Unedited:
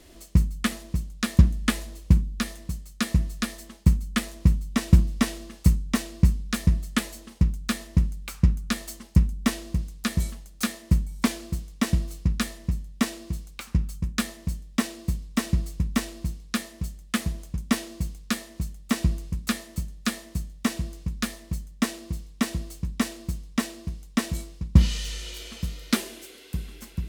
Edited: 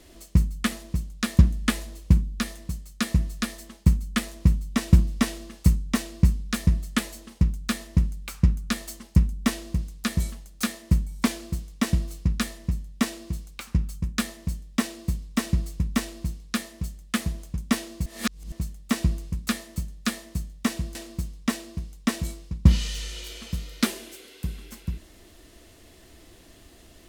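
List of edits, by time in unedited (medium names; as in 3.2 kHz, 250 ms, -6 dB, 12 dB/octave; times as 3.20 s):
18.06–18.52 s: reverse
20.95–23.05 s: delete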